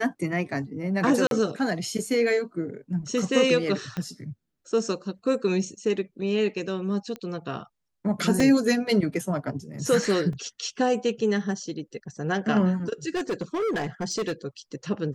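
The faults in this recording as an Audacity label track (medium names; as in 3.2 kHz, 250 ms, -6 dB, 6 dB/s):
1.270000	1.310000	dropout 42 ms
3.970000	3.970000	pop -18 dBFS
7.160000	7.160000	pop -22 dBFS
8.400000	8.400000	dropout 3.2 ms
10.330000	10.330000	dropout 2.8 ms
13.150000	14.330000	clipped -23.5 dBFS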